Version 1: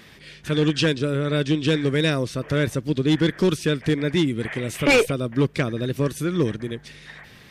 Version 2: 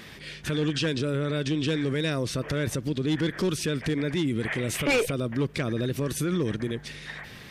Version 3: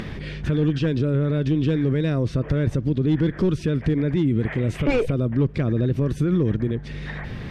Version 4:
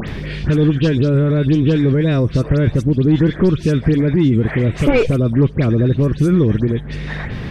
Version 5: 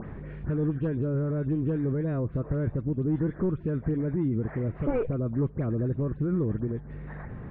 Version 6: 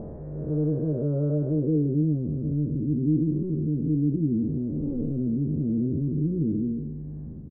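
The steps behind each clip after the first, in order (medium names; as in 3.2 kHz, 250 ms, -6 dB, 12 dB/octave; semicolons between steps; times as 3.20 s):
peak limiter -22.5 dBFS, peak gain reduction 10 dB; trim +3 dB
tilt EQ -3 dB/octave; upward compressor, threshold -23 dBFS; treble shelf 7.9 kHz -11.5 dB
phase dispersion highs, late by 87 ms, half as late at 2.9 kHz; trim +7 dB
four-pole ladder low-pass 1.7 kHz, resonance 20%; trim -8.5 dB
spectral blur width 279 ms; low-pass sweep 620 Hz -> 280 Hz, 1.52–2.02 s; doubling 13 ms -5.5 dB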